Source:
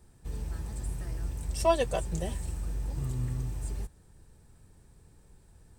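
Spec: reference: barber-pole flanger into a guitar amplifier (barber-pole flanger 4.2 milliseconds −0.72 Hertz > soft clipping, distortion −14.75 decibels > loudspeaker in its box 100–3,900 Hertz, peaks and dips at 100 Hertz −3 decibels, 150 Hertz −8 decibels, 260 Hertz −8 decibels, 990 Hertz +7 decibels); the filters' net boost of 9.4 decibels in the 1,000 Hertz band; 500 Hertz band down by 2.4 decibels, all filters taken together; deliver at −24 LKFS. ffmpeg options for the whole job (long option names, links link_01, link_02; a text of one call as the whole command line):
ffmpeg -i in.wav -filter_complex "[0:a]equalizer=frequency=500:width_type=o:gain=-7.5,equalizer=frequency=1000:width_type=o:gain=6,asplit=2[link_01][link_02];[link_02]adelay=4.2,afreqshift=-0.72[link_03];[link_01][link_03]amix=inputs=2:normalize=1,asoftclip=threshold=-22dB,highpass=100,equalizer=frequency=100:width_type=q:width=4:gain=-3,equalizer=frequency=150:width_type=q:width=4:gain=-8,equalizer=frequency=260:width_type=q:width=4:gain=-8,equalizer=frequency=990:width_type=q:width=4:gain=7,lowpass=frequency=3900:width=0.5412,lowpass=frequency=3900:width=1.3066,volume=10.5dB" out.wav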